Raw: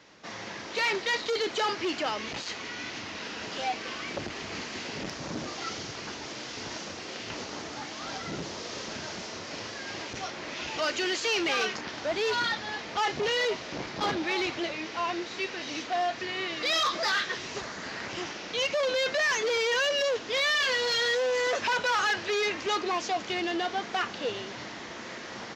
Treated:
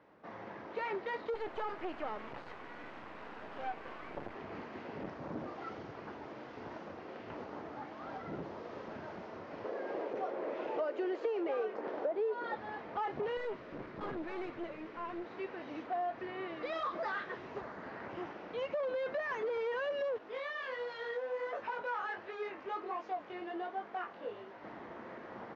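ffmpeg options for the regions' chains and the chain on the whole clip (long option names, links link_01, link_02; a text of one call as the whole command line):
ffmpeg -i in.wav -filter_complex "[0:a]asettb=1/sr,asplit=3[link_01][link_02][link_03];[link_01]atrim=end=1.344[link_04];[link_02]atrim=start=1.34:end=4.35,asetpts=PTS-STARTPTS,afade=type=in:duration=0.004:curve=qsin,afade=type=out:start_time=3.006:duration=0.004:curve=qsin,acrusher=bits=4:dc=4:mix=0:aa=0.000001,equalizer=frequency=1800:width=0.35:gain=4[link_05];[link_03]atrim=start=4.346[link_06];[link_04][link_05]acrossfade=duration=0.004:curve1=hsin:curve2=qsin[link_07];[link_07][link_06]acrossfade=duration=0.004:curve1=qsin:curve2=hsin,asettb=1/sr,asplit=3[link_08][link_09][link_10];[link_08]atrim=end=9.644[link_11];[link_09]atrim=start=9.64:end=12.56,asetpts=PTS-STARTPTS,afade=type=in:duration=0.004:curve=qsin,afade=type=out:start_time=2.916:duration=0.004:curve=qsin,highpass=220,equalizer=frequency=480:width_type=o:width=1.1:gain=13[link_12];[link_10]atrim=start=12.556[link_13];[link_11][link_12]acrossfade=duration=0.004:curve1=hsin:curve2=qsin[link_14];[link_14][link_13]acrossfade=duration=0.004:curve1=qsin:curve2=hsin,asettb=1/sr,asplit=3[link_15][link_16][link_17];[link_15]atrim=end=13.374[link_18];[link_16]atrim=start=13.37:end=15.25,asetpts=PTS-STARTPTS,afade=type=in:duration=0.004:curve=qsin,afade=type=out:start_time=1.876:duration=0.004:curve=qsin,equalizer=frequency=790:width=3.3:gain=-10.5,aeval=exprs='clip(val(0),-1,0.0126)':channel_layout=same[link_19];[link_17]atrim=start=15.246[link_20];[link_18][link_19]acrossfade=duration=0.004:curve1=hsin:curve2=qsin[link_21];[link_21][link_20]acrossfade=duration=0.004:curve1=qsin:curve2=hsin,asettb=1/sr,asplit=3[link_22][link_23][link_24];[link_22]atrim=end=20.184[link_25];[link_23]atrim=start=20.18:end=24.64,asetpts=PTS-STARTPTS,afade=type=in:duration=0.004:curve=qsin,afade=type=out:start_time=4.456:duration=0.004:curve=qsin,lowshelf=frequency=270:gain=-10,flanger=delay=18:depth=4.9:speed=1.4[link_26];[link_24]atrim=start=24.636[link_27];[link_25][link_26]acrossfade=duration=0.004:curve1=hsin:curve2=qsin[link_28];[link_28][link_27]acrossfade=duration=0.004:curve1=qsin:curve2=hsin,lowpass=1100,lowshelf=frequency=260:gain=-6,acompressor=threshold=-30dB:ratio=6,volume=-2.5dB" out.wav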